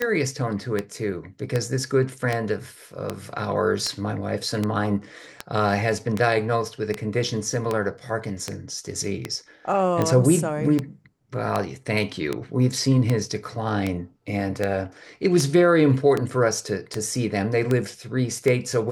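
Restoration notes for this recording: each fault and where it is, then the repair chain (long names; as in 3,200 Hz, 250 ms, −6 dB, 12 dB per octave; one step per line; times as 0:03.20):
scratch tick 78 rpm −10 dBFS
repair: click removal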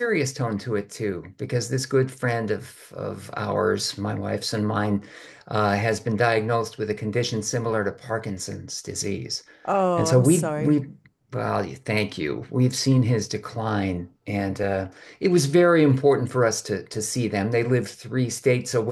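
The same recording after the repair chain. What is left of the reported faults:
none of them is left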